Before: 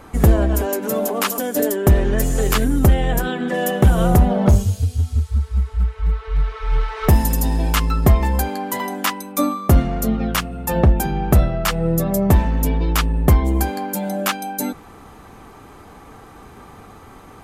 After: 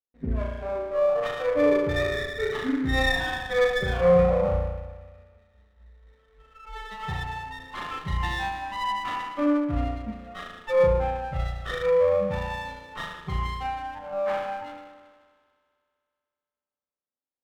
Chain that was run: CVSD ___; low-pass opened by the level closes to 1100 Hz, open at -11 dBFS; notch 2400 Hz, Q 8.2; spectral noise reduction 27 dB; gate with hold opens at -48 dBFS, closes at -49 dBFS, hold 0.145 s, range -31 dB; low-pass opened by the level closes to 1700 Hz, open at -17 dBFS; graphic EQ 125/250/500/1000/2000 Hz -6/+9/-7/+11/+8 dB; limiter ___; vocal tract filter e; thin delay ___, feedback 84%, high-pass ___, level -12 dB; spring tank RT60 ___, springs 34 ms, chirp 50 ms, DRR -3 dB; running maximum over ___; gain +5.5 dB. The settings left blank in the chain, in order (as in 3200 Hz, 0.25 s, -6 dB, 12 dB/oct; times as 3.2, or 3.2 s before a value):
16 kbps, -8 dBFS, 63 ms, 1800 Hz, 1.2 s, 9 samples